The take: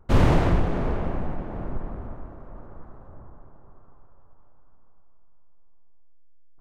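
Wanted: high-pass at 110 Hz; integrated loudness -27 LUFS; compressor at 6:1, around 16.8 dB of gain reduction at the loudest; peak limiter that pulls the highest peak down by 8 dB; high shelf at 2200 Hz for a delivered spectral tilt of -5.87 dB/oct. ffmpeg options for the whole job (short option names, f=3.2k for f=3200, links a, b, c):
-af "highpass=110,highshelf=f=2.2k:g=-3,acompressor=threshold=-36dB:ratio=6,volume=17dB,alimiter=limit=-15.5dB:level=0:latency=1"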